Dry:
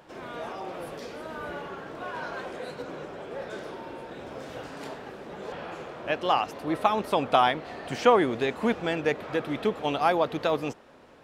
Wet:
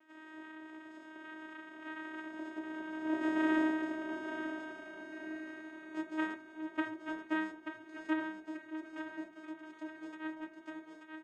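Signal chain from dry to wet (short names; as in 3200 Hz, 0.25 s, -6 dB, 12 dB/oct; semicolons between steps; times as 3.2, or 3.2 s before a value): Doppler pass-by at 3.56, 28 m/s, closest 4.7 m; LPF 3000 Hz; bell 1200 Hz +9 dB 0.4 oct; vocoder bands 4, saw 314 Hz; feedback echo 0.884 s, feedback 38%, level -8 dB; reverb RT60 0.20 s, pre-delay 3 ms, DRR 3.5 dB; mismatched tape noise reduction encoder only; gain +10.5 dB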